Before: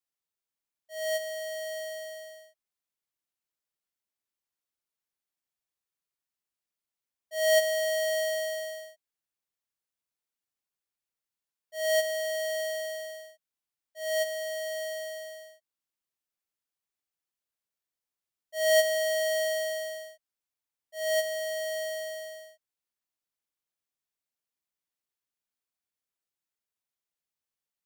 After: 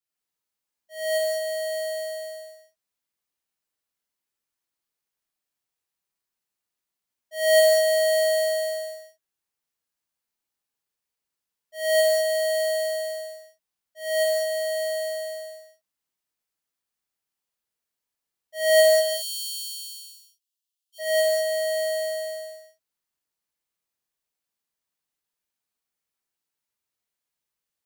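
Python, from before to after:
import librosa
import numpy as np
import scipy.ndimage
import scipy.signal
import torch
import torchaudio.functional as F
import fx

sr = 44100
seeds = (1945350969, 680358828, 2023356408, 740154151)

y = fx.steep_highpass(x, sr, hz=2700.0, slope=96, at=(18.99, 20.98), fade=0.02)
y = fx.rev_gated(y, sr, seeds[0], gate_ms=230, shape='flat', drr_db=-7.0)
y = F.gain(torch.from_numpy(y), -3.0).numpy()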